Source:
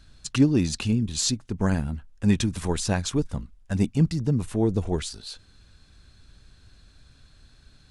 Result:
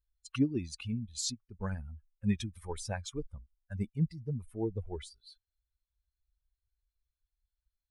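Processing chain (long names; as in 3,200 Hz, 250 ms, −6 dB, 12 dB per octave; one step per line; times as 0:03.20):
spectral dynamics exaggerated over time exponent 2
level −7.5 dB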